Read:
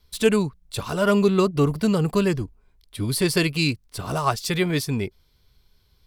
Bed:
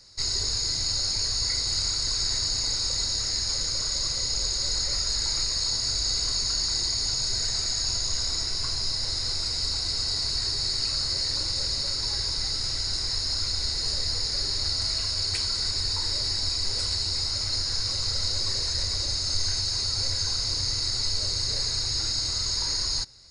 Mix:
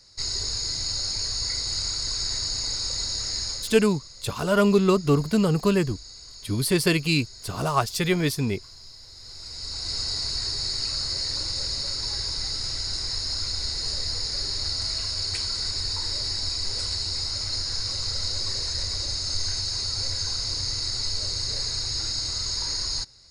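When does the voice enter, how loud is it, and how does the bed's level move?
3.50 s, -0.5 dB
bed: 3.45 s -1.5 dB
4 s -17.5 dB
9.12 s -17.5 dB
9.94 s -1 dB

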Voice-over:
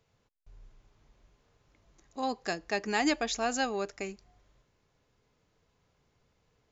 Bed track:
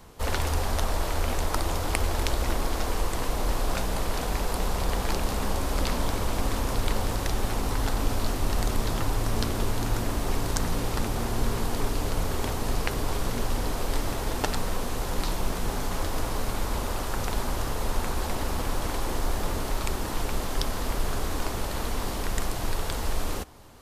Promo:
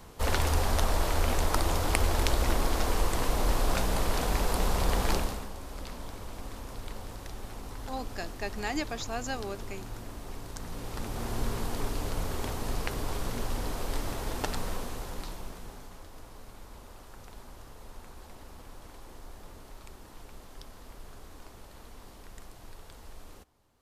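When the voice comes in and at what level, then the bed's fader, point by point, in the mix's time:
5.70 s, -5.0 dB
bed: 5.16 s 0 dB
5.5 s -14 dB
10.54 s -14 dB
11.32 s -5 dB
14.71 s -5 dB
16.03 s -19.5 dB

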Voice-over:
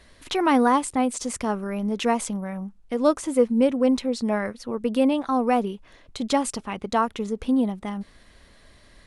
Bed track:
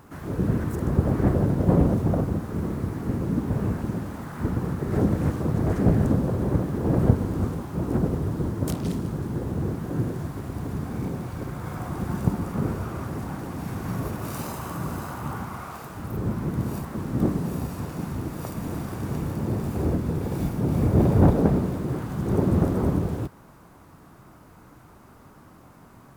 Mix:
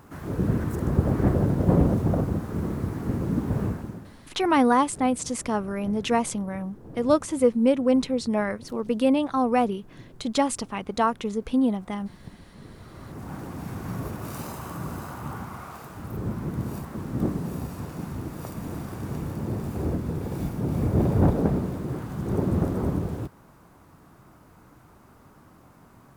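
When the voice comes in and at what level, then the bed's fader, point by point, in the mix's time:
4.05 s, -0.5 dB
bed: 3.63 s -0.5 dB
4.36 s -21 dB
12.59 s -21 dB
13.35 s -3 dB

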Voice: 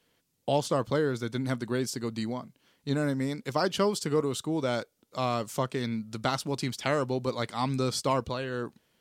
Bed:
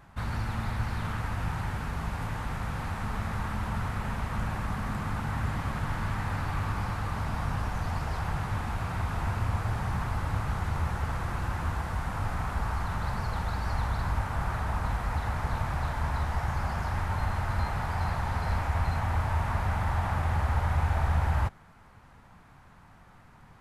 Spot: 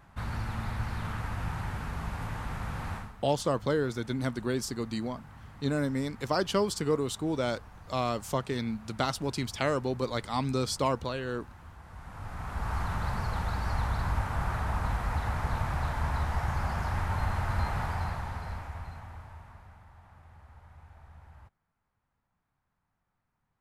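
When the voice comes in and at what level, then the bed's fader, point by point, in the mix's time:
2.75 s, -1.0 dB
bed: 2.96 s -2.5 dB
3.16 s -18.5 dB
11.75 s -18.5 dB
12.77 s -0.5 dB
17.83 s -0.5 dB
19.9 s -26.5 dB

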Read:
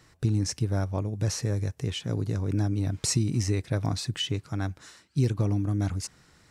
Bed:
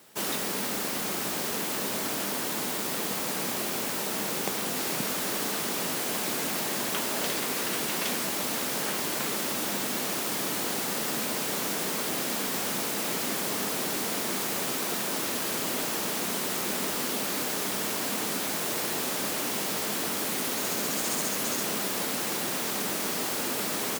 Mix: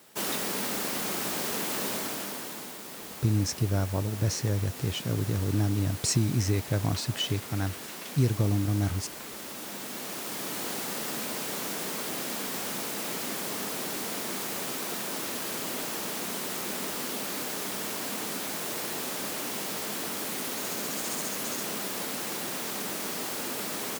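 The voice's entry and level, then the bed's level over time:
3.00 s, 0.0 dB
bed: 1.89 s -0.5 dB
2.79 s -11 dB
9.25 s -11 dB
10.66 s -3.5 dB

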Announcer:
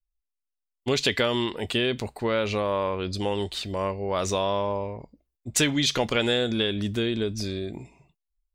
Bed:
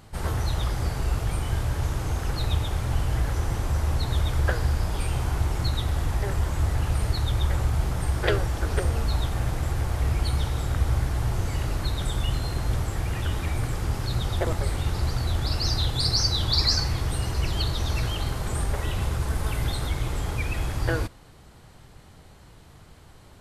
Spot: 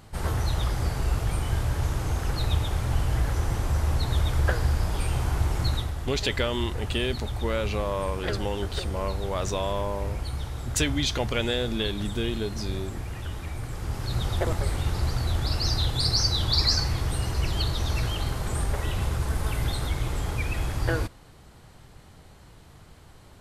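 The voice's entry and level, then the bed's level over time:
5.20 s, -3.5 dB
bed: 5.75 s 0 dB
5.95 s -7 dB
13.64 s -7 dB
14.22 s -0.5 dB

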